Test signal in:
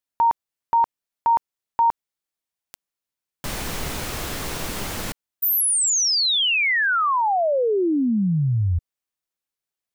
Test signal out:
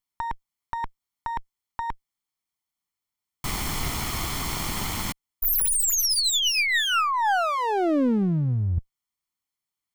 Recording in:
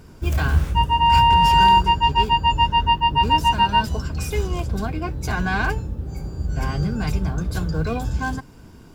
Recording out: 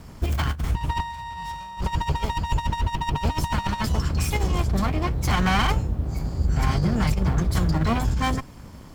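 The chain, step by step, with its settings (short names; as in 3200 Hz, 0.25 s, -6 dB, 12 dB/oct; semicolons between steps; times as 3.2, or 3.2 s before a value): minimum comb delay 0.94 ms; negative-ratio compressor -22 dBFS, ratio -0.5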